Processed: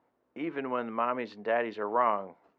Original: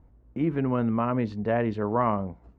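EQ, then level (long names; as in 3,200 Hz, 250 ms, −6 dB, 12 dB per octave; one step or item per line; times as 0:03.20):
band-pass filter 380–4,000 Hz
spectral tilt +2 dB per octave
0.0 dB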